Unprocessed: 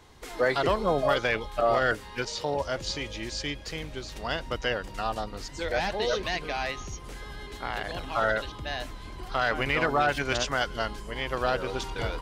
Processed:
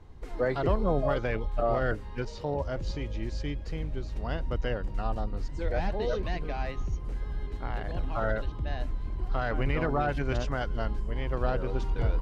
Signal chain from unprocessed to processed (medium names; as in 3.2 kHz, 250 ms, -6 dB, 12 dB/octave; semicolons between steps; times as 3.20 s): tilt EQ -3.5 dB/octave; band-stop 3.4 kHz, Q 25; trim -6 dB